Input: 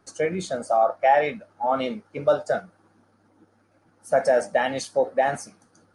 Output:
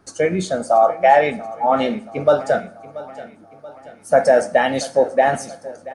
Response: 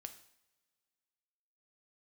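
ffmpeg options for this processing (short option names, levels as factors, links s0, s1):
-filter_complex "[0:a]aecho=1:1:682|1364|2046|2728:0.126|0.0655|0.034|0.0177,asplit=2[s0][s1];[1:a]atrim=start_sample=2205,lowshelf=f=460:g=6.5[s2];[s1][s2]afir=irnorm=-1:irlink=0,volume=1.12[s3];[s0][s3]amix=inputs=2:normalize=0,volume=1.19"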